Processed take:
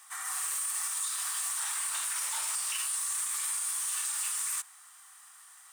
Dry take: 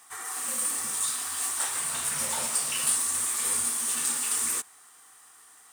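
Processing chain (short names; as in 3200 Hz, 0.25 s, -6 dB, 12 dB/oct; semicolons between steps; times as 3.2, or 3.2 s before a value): HPF 890 Hz 24 dB/oct; limiter -23.5 dBFS, peak gain reduction 11 dB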